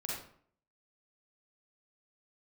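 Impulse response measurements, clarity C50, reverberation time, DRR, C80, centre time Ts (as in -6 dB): -1.0 dB, 0.55 s, -4.5 dB, 4.5 dB, 58 ms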